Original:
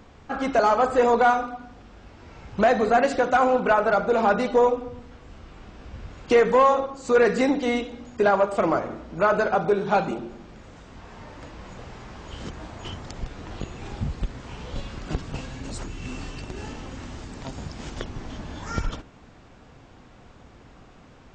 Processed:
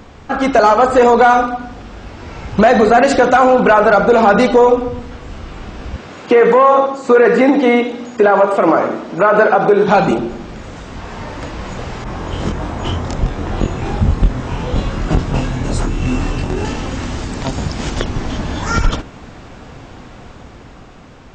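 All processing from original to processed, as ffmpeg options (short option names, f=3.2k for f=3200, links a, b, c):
-filter_complex "[0:a]asettb=1/sr,asplit=3[a][b][c];[a]atrim=end=5.964[d];[b]atrim=start=5.96:end=9.88,asetpts=PTS-STARTPTS,afade=t=in:d=0.004:c=qsin,afade=t=out:st=3.916:d=0.004:c=qsin,highpass=220,acrossover=split=2800[e][f];[f]acompressor=threshold=-54dB:ratio=4:attack=1:release=60[g];[e][g]amix=inputs=2:normalize=0,aecho=1:1:96:0.188,atrim=end_sample=172872[h];[c]atrim=start=9.876[i];[d][h]acrossfade=d=0.004:c1=hsin:c2=qsin[j];[j][i]acrossfade=d=0.004:c1=qsin:c2=hsin,asettb=1/sr,asplit=3[k][l][m];[k]atrim=end=12.044[n];[l]atrim=start=12.04:end=16.65,asetpts=PTS-STARTPTS,afade=t=in:d=0.004:c=qsin,afade=t=out:st=4.606:d=0.004:c=qsin,bandreject=f=4.5k:w=19,asplit=2[o][p];[p]adelay=24,volume=-3dB[q];[o][q]amix=inputs=2:normalize=0,atrim=end_sample=203301,adynamicequalizer=threshold=0.00282:dfrequency=1700:dqfactor=0.7:tfrequency=1700:tqfactor=0.7:attack=5:release=100:ratio=0.375:range=3:mode=cutabove:tftype=highshelf[r];[m]atrim=start=16.646[s];[n][r]acrossfade=d=0.004:c1=hsin:c2=qsin[t];[t][s]acrossfade=d=0.004:c1=qsin:c2=hsin,dynaudnorm=f=180:g=13:m=4dB,alimiter=level_in=12dB:limit=-1dB:release=50:level=0:latency=1,volume=-1dB"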